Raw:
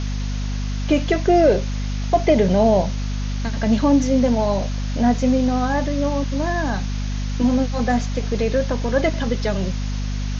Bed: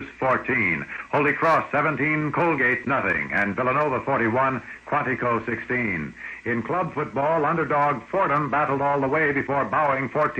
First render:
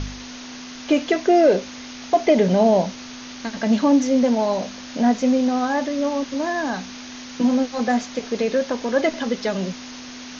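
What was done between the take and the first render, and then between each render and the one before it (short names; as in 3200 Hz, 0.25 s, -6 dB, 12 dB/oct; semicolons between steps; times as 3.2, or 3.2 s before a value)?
de-hum 50 Hz, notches 4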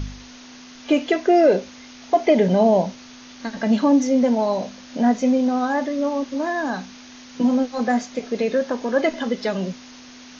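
noise print and reduce 6 dB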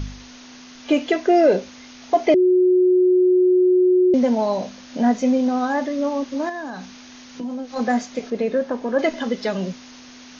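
2.34–4.14 bleep 365 Hz -12 dBFS; 6.49–7.76 compressor 3:1, threshold -29 dBFS; 8.3–8.99 high shelf 2600 Hz -10 dB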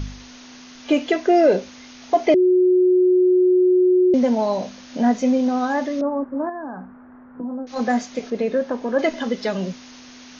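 6.01–7.67 steep low-pass 1500 Hz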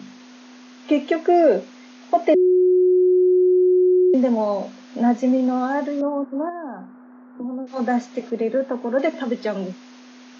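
steep high-pass 190 Hz 48 dB/oct; high shelf 2800 Hz -9.5 dB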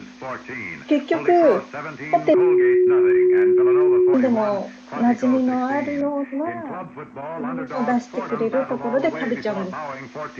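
add bed -9.5 dB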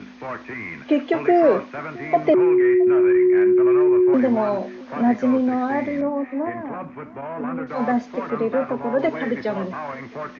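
air absorption 130 m; echo 0.668 s -22.5 dB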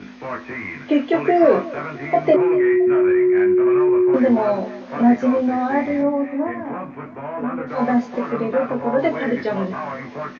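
doubler 21 ms -2 dB; echo 0.244 s -18 dB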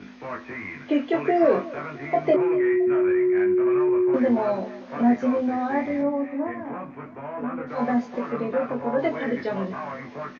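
gain -5 dB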